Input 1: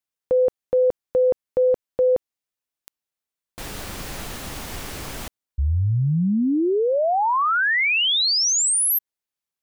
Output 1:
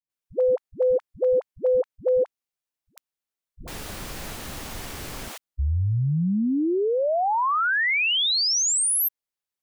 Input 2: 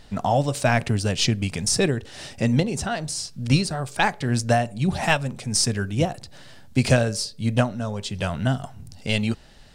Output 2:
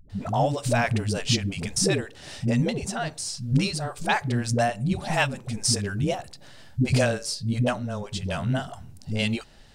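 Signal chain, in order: phase dispersion highs, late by 98 ms, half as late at 300 Hz; trim -2.5 dB

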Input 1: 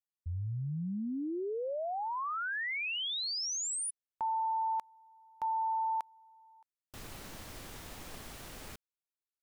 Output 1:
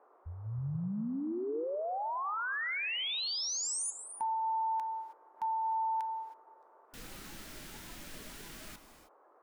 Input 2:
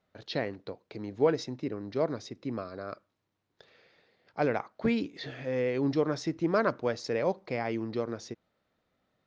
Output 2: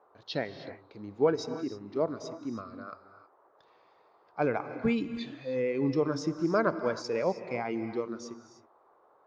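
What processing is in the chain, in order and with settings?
band noise 350–1200 Hz -55 dBFS; spectral noise reduction 9 dB; gated-style reverb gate 340 ms rising, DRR 10.5 dB

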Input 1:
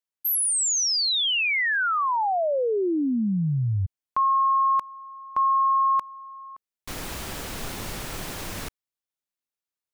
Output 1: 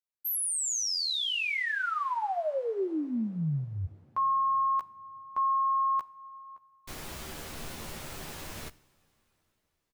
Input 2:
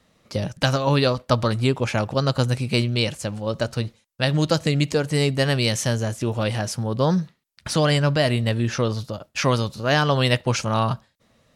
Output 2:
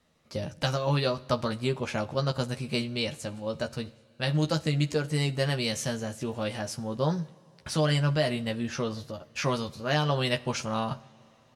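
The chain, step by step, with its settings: doubling 13 ms -5 dB; two-slope reverb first 0.58 s, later 4.5 s, from -16 dB, DRR 17 dB; trim -8.5 dB

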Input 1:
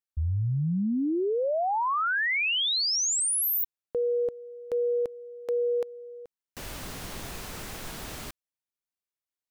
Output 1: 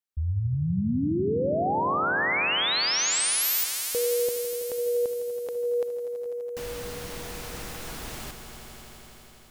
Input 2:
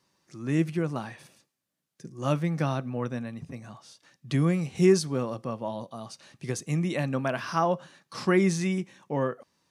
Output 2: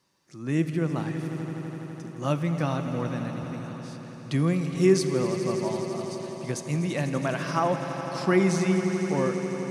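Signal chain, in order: echo with a slow build-up 83 ms, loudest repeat 5, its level -14 dB; Schroeder reverb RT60 2.6 s, combs from 32 ms, DRR 14 dB

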